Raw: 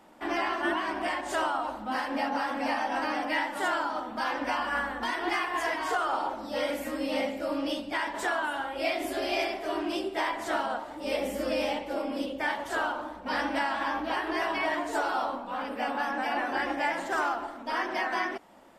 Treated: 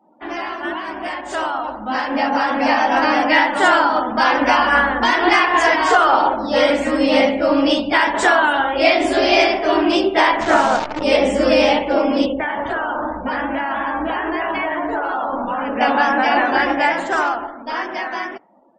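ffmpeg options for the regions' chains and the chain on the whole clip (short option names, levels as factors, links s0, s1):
-filter_complex "[0:a]asettb=1/sr,asplit=3[s0][s1][s2];[s0]atrim=end=10.414[s3];[s1]atrim=start=10.41:end=11.03,asetpts=PTS-STARTPTS,afade=t=in:d=0.004:c=qsin,afade=t=out:st=0.616:d=0.004:c=qsin,lowpass=f=2700:w=0.5412,lowpass=f=2700:w=1.3066,equalizer=f=170:w=2.3:g=5.5,acrusher=bits=7:dc=4:mix=0:aa=0.000001[s4];[s2]atrim=start=11.026[s5];[s3][s4]acrossfade=d=0.004:c1=hsin:c2=qsin[s6];[s6][s5]acrossfade=d=0.004:c1=qsin:c2=hsin,asettb=1/sr,asplit=3[s7][s8][s9];[s7]atrim=end=12.264[s10];[s8]atrim=start=12.26:end=15.81,asetpts=PTS-STARTPTS,afade=t=in:d=0.004:c=qsin,afade=t=out:st=3.546:d=0.004:c=qsin,bass=f=250:g=4,treble=f=4000:g=-13,bandreject=f=50:t=h:w=6,bandreject=f=100:t=h:w=6,bandreject=f=150:t=h:w=6,bandreject=f=200:t=h:w=6,bandreject=f=250:t=h:w=6,bandreject=f=300:t=h:w=6,bandreject=f=350:t=h:w=6,bandreject=f=400:t=h:w=6,bandreject=f=450:t=h:w=6,acompressor=threshold=0.0224:ratio=10:attack=3.2:release=140:knee=1:detection=peak[s11];[s9]atrim=start=15.806[s12];[s10][s11]acrossfade=d=0.004:c1=hsin:c2=qsin[s13];[s13][s12]acrossfade=d=0.004:c1=qsin:c2=hsin,lowpass=f=8600:w=0.5412,lowpass=f=8600:w=1.3066,afftdn=nr=29:nf=-52,dynaudnorm=f=410:g=11:m=4.47,volume=1.41"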